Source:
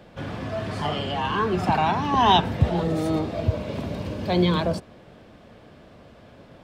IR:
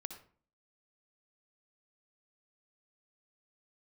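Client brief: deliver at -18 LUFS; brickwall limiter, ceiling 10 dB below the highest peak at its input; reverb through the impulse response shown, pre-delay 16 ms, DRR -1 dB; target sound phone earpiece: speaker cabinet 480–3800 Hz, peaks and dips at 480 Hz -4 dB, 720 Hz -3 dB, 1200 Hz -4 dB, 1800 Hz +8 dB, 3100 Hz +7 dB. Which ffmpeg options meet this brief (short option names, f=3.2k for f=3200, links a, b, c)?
-filter_complex "[0:a]alimiter=limit=-15dB:level=0:latency=1,asplit=2[a][b];[1:a]atrim=start_sample=2205,adelay=16[c];[b][c]afir=irnorm=-1:irlink=0,volume=4dB[d];[a][d]amix=inputs=2:normalize=0,highpass=480,equalizer=f=480:t=q:w=4:g=-4,equalizer=f=720:t=q:w=4:g=-3,equalizer=f=1.2k:t=q:w=4:g=-4,equalizer=f=1.8k:t=q:w=4:g=8,equalizer=f=3.1k:t=q:w=4:g=7,lowpass=f=3.8k:w=0.5412,lowpass=f=3.8k:w=1.3066,volume=7.5dB"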